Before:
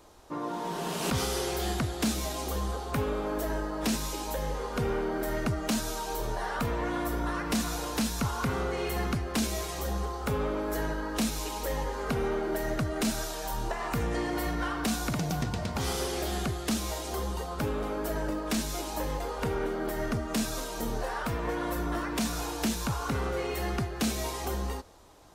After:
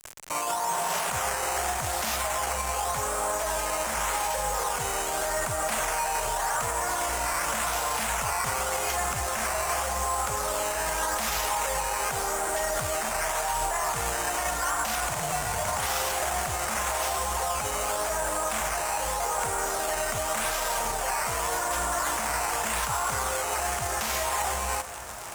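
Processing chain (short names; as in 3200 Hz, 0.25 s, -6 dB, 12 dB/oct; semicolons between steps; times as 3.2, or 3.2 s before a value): in parallel at -2 dB: negative-ratio compressor -34 dBFS, ratio -0.5; on the sum: decimation with a swept rate 9×, swing 100% 0.86 Hz; resonant low shelf 500 Hz -11.5 dB, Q 1.5; bit-crush 7-bit; one-sided clip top -24 dBFS; limiter -28 dBFS, peak gain reduction 10 dB; graphic EQ 250/4000/8000 Hz -6/-7/+10 dB; diffused feedback echo 1.261 s, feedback 72%, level -14 dB; gain +8 dB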